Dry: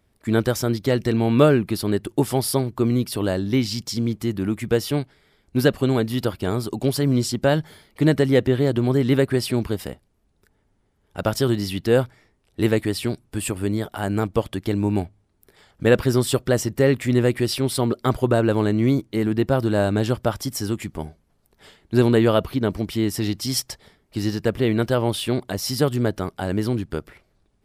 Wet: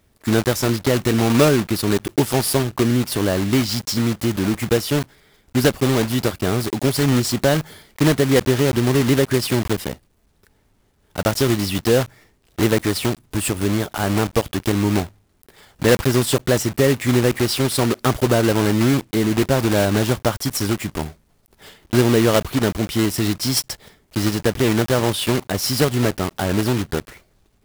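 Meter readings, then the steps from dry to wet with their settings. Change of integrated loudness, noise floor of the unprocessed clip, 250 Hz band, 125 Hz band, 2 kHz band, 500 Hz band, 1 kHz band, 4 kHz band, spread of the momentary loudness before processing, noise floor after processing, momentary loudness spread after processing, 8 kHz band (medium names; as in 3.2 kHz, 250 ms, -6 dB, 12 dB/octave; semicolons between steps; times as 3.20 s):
+2.5 dB, -66 dBFS, +2.5 dB, +2.0 dB, +5.0 dB, +1.5 dB, +4.0 dB, +5.5 dB, 9 LU, -61 dBFS, 7 LU, +6.5 dB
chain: block-companded coder 3-bit; compression 1.5:1, threshold -23 dBFS, peak gain reduction 5.5 dB; trim +5 dB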